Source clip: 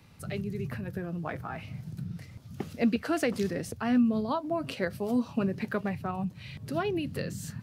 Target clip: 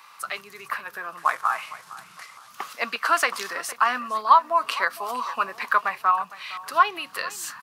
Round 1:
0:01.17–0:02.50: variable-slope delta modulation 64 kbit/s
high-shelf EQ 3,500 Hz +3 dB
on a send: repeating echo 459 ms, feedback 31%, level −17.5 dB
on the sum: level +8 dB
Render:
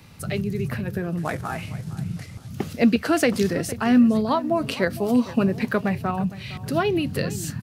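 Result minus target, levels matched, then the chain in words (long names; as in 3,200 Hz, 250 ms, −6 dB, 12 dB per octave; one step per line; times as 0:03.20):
1,000 Hz band −9.5 dB
0:01.17–0:02.50: variable-slope delta modulation 64 kbit/s
high-pass with resonance 1,100 Hz, resonance Q 5.7
high-shelf EQ 3,500 Hz +3 dB
on a send: repeating echo 459 ms, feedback 31%, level −17.5 dB
on the sum: level +8 dB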